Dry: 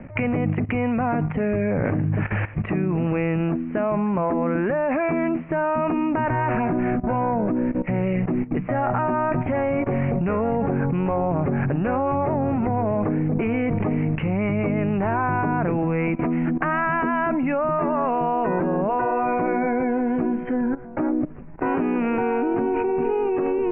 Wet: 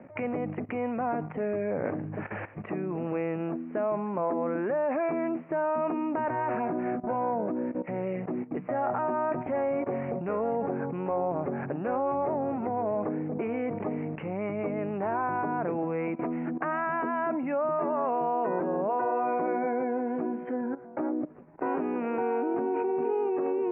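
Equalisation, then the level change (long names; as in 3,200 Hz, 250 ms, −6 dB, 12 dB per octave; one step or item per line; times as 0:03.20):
resonant band-pass 510 Hz, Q 0.72
spectral tilt +1.5 dB per octave
−3.0 dB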